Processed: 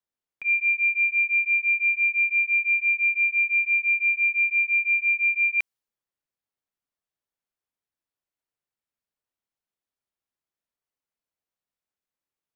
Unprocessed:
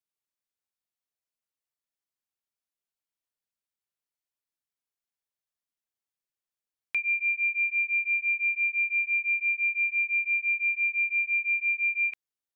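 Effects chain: reverse the whole clip; tape noise reduction on one side only decoder only; trim +4.5 dB

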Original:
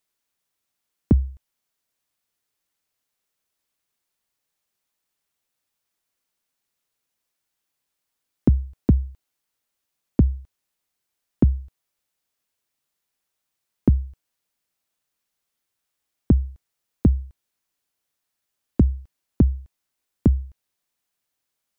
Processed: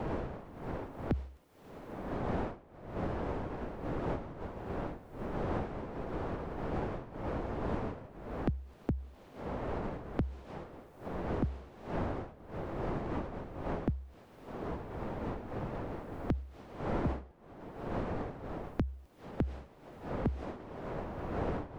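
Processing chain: wind noise 590 Hz -34 dBFS; three bands compressed up and down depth 100%; trim -8.5 dB

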